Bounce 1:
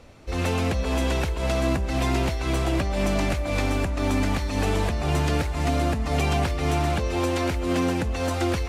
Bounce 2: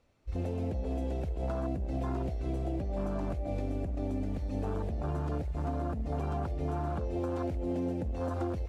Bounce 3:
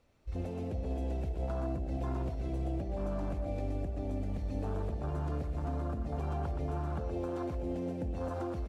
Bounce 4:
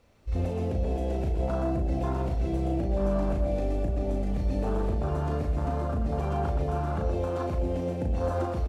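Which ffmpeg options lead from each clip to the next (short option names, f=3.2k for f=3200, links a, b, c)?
-af "afwtdn=0.0631,acompressor=threshold=-25dB:ratio=6,volume=-4.5dB"
-filter_complex "[0:a]asplit=2[a][b];[b]alimiter=level_in=10.5dB:limit=-24dB:level=0:latency=1,volume=-10.5dB,volume=0.5dB[c];[a][c]amix=inputs=2:normalize=0,aecho=1:1:121:0.422,volume=-6dB"
-filter_complex "[0:a]asplit=2[a][b];[b]adelay=36,volume=-4dB[c];[a][c]amix=inputs=2:normalize=0,volume=6.5dB"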